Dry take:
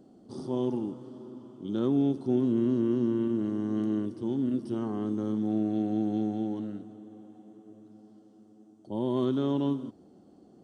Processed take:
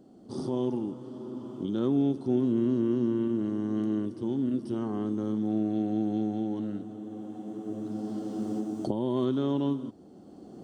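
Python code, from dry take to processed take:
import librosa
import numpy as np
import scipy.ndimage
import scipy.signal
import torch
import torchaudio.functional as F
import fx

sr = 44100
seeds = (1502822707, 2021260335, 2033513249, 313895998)

y = fx.recorder_agc(x, sr, target_db=-23.0, rise_db_per_s=12.0, max_gain_db=30)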